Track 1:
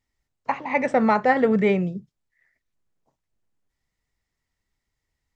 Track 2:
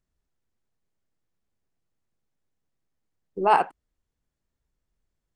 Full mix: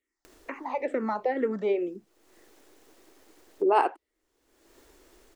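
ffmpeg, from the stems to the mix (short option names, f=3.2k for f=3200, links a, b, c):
-filter_complex "[0:a]acrossover=split=300[a][b];[b]acompressor=threshold=-27dB:ratio=3[c];[a][c]amix=inputs=2:normalize=0,asplit=2[d][e];[e]afreqshift=-2.2[f];[d][f]amix=inputs=2:normalize=1,volume=-2dB,asplit=2[g][h];[1:a]acompressor=mode=upward:threshold=-19dB:ratio=2.5,adelay=250,volume=-5dB[i];[h]apad=whole_len=247311[j];[i][j]sidechaincompress=threshold=-49dB:ratio=4:attack=9:release=320[k];[g][k]amix=inputs=2:normalize=0,lowshelf=f=230:t=q:w=3:g=-13"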